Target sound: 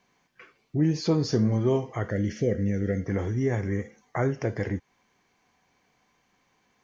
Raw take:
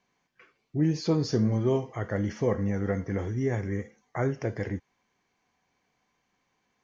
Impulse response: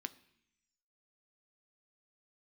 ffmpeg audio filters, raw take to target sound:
-filter_complex "[0:a]asplit=2[a][b];[b]acompressor=threshold=-37dB:ratio=6,volume=0.5dB[c];[a][c]amix=inputs=2:normalize=0,asettb=1/sr,asplit=3[d][e][f];[d]atrim=end=2.114[g];[e]atrim=start=2.11:end=3.06,asetpts=PTS-STARTPTS,afade=t=in:d=0.004:c=qsin,afade=t=out:st=0.946:d=0.004:c=qsin,asuperstop=centerf=980:order=4:qfactor=0.83[h];[f]atrim=start=3.056[i];[g][h]acrossfade=d=0.004:c1=hsin:c2=qsin[j];[j][i]acrossfade=d=0.004:c1=qsin:c2=hsin"

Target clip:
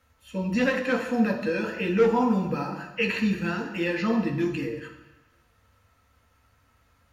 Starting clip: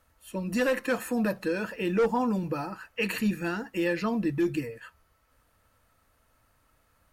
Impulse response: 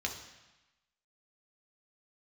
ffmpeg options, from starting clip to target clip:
-filter_complex "[0:a]acrossover=split=5900[a][b];[b]acompressor=threshold=-55dB:ratio=4:attack=1:release=60[c];[a][c]amix=inputs=2:normalize=0[d];[1:a]atrim=start_sample=2205,asetrate=43659,aresample=44100[e];[d][e]afir=irnorm=-1:irlink=0"

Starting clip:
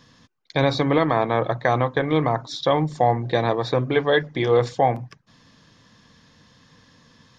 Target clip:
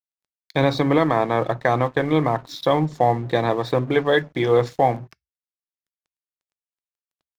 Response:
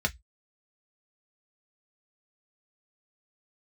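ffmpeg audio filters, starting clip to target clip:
-filter_complex "[0:a]equalizer=f=300:w=1.1:g=2.5,aeval=exprs='sgn(val(0))*max(abs(val(0))-0.0075,0)':c=same,asplit=2[a][b];[1:a]atrim=start_sample=2205,highshelf=f=3.1k:g=11.5[c];[b][c]afir=irnorm=-1:irlink=0,volume=-28dB[d];[a][d]amix=inputs=2:normalize=0"

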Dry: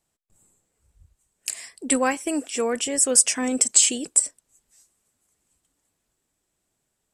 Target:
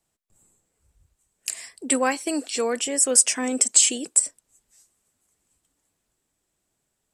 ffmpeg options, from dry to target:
-filter_complex "[0:a]asettb=1/sr,asplit=3[a][b][c];[a]atrim=end=2.124[d];[b]atrim=start=2.12:end=2.78,asetpts=PTS-STARTPTS,afade=t=in:d=0.004:c=qsin,afade=t=out:st=0.656:d=0.004:c=qsin,equalizer=f=4.3k:w=4.9:g=15[e];[c]atrim=start=2.776[f];[d][e]acrossfade=d=0.004:c1=hsin:c2=qsin[g];[g][f]acrossfade=d=0.004:c1=qsin:c2=hsin,acrossover=split=180|4000[h][i][j];[h]acompressor=threshold=-59dB:ratio=6[k];[k][i][j]amix=inputs=3:normalize=0"

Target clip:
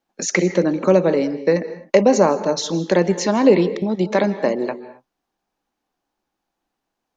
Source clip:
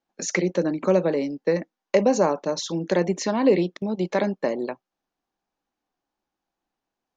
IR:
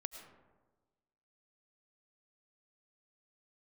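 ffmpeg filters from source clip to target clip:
-filter_complex "[0:a]asplit=2[a][b];[1:a]atrim=start_sample=2205,afade=t=out:st=0.23:d=0.01,atrim=end_sample=10584,asetrate=29547,aresample=44100[c];[b][c]afir=irnorm=-1:irlink=0,volume=0dB[d];[a][d]amix=inputs=2:normalize=0"

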